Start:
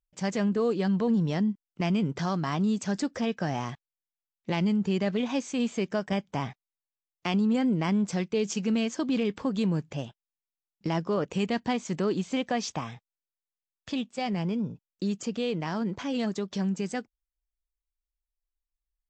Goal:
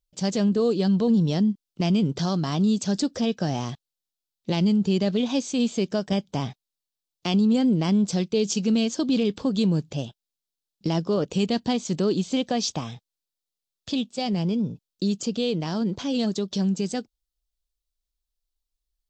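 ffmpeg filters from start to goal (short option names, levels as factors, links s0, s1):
-af "equalizer=f=1000:t=o:w=1:g=-5,equalizer=f=2000:t=o:w=1:g=-10,equalizer=f=4000:t=o:w=1:g=7,volume=1.78"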